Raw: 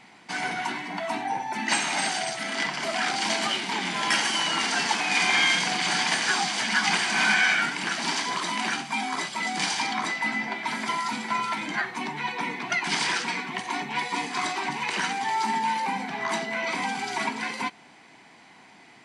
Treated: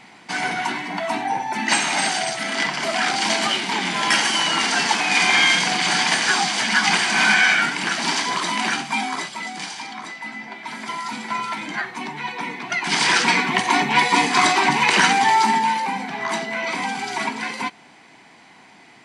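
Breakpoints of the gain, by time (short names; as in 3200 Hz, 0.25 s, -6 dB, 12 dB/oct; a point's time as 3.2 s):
8.98 s +5.5 dB
9.72 s -5.5 dB
10.35 s -5.5 dB
11.26 s +1.5 dB
12.71 s +1.5 dB
13.28 s +12 dB
15.21 s +12 dB
15.88 s +3.5 dB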